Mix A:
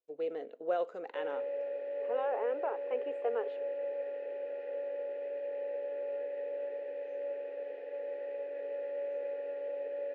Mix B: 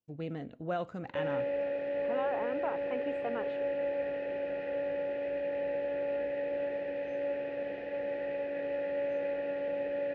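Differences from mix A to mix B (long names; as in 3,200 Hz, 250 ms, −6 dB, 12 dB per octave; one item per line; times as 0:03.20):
speech −7.5 dB
master: remove four-pole ladder high-pass 410 Hz, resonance 65%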